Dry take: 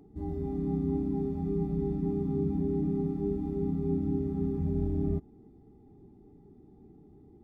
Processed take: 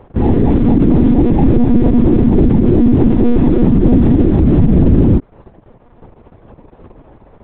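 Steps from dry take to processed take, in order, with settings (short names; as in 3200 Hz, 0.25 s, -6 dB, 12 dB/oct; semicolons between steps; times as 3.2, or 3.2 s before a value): dynamic EQ 470 Hz, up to -4 dB, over -45 dBFS, Q 1.1; crossover distortion -53 dBFS; monotone LPC vocoder at 8 kHz 240 Hz; maximiser +27 dB; gain -1 dB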